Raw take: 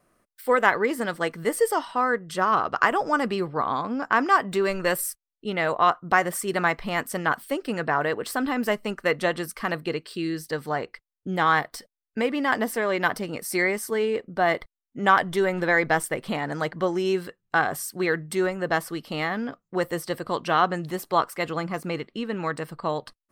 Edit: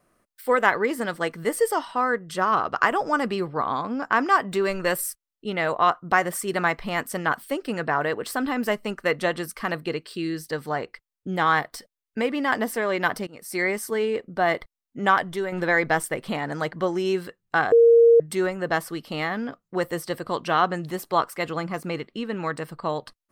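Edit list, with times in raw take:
13.27–13.7 fade in, from -19 dB
15.02–15.52 fade out, to -7 dB
17.72–18.2 bleep 465 Hz -10.5 dBFS

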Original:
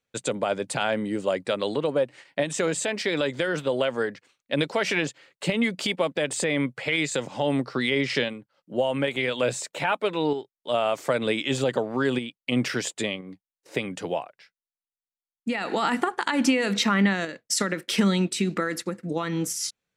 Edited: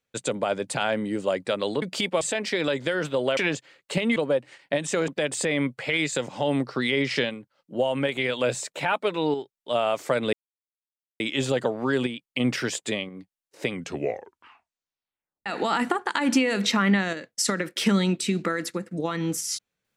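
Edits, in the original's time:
1.82–2.74 swap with 5.68–6.07
3.9–4.89 cut
11.32 insert silence 0.87 s
13.81 tape stop 1.77 s

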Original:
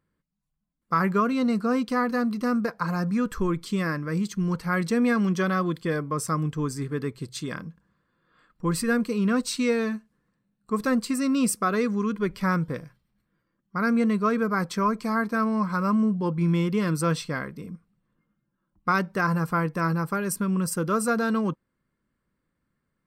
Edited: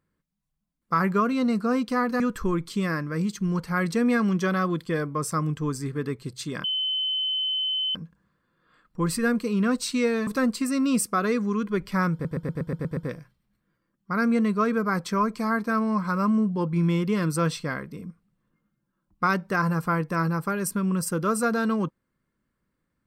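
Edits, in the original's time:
2.2–3.16 cut
7.6 add tone 3050 Hz -23.5 dBFS 1.31 s
9.92–10.76 cut
12.62 stutter 0.12 s, 8 plays

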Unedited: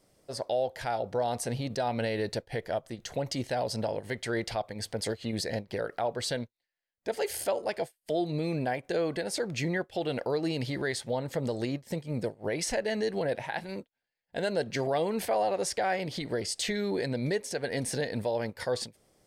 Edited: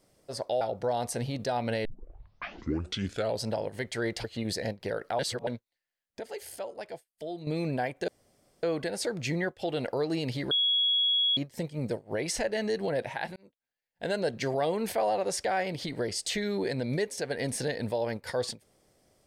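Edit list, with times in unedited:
0.61–0.92 cut
2.16 tape start 1.58 s
4.55–5.12 cut
6.07–6.35 reverse
7.08–8.35 gain -8.5 dB
8.96 insert room tone 0.55 s
10.84–11.7 bleep 3340 Hz -22.5 dBFS
13.69–14.38 fade in

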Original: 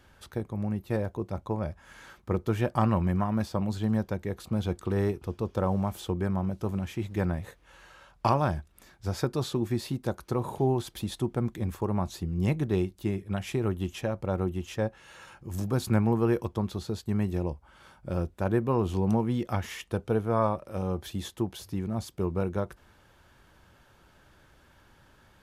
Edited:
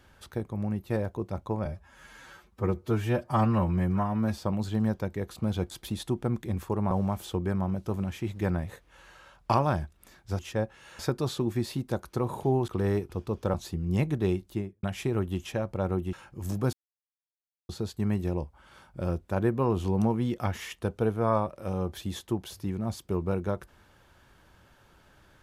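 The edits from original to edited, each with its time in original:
1.65–3.47 stretch 1.5×
4.8–5.66 swap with 10.83–12.03
12.97–13.32 studio fade out
14.62–15.22 move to 9.14
15.82–16.78 mute

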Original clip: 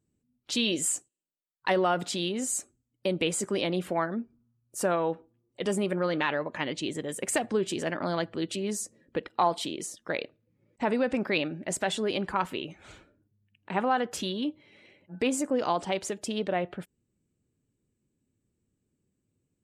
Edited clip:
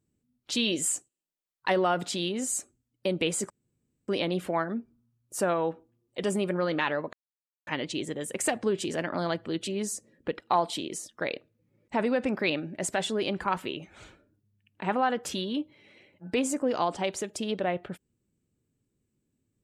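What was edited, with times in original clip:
3.5 insert room tone 0.58 s
6.55 insert silence 0.54 s

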